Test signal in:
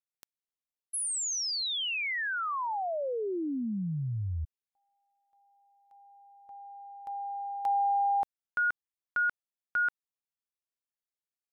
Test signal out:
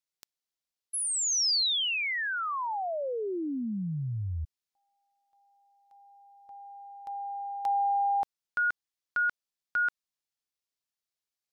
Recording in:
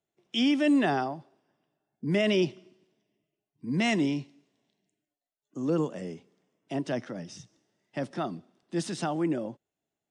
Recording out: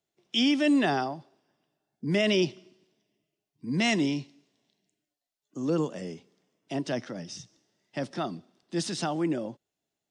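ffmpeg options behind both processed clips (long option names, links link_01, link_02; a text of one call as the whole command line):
ffmpeg -i in.wav -af "equalizer=frequency=4800:width_type=o:width=1.3:gain=6.5" out.wav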